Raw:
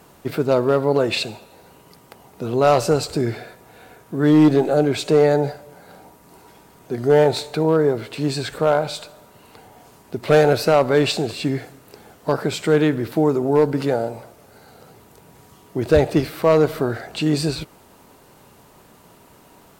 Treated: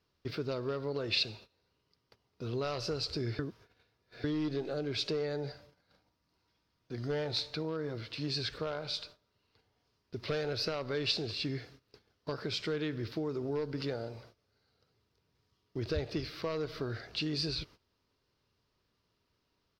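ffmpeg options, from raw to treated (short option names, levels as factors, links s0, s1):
-filter_complex "[0:a]asettb=1/sr,asplit=3[s0][s1][s2];[s0]atrim=end=5.524[s3];[s1]atrim=start=5.52:end=8.28,asetpts=PTS-STARTPTS,afade=t=in:d=0.004:c=qsin,afade=t=out:st=2.756:d=0.004:c=qsin,bandreject=f=410:w=5.6[s4];[s2]atrim=start=8.276[s5];[s3][s4]acrossfade=d=0.004:c1=hsin:c2=qsin[s6];[s6][s5]acrossfade=d=0.004:c1=qsin:c2=hsin,asplit=3[s7][s8][s9];[s7]atrim=end=3.392[s10];[s8]atrim=start=3.388:end=4.242,asetpts=PTS-STARTPTS,areverse[s11];[s9]atrim=start=4.238[s12];[s10][s11]acrossfade=d=0.004:c1=hsin:c2=hsin[s13];[s13][s12]acrossfade=d=0.004:c1=hsin:c2=hsin,acompressor=threshold=0.141:ratio=6,agate=range=0.158:threshold=0.00794:ratio=16:detection=peak,firequalizer=gain_entry='entry(100,0);entry(160,-9);entry(430,-7);entry(790,-15);entry(1100,-7);entry(5100,4);entry(7500,-19)':delay=0.05:min_phase=1,volume=0.501"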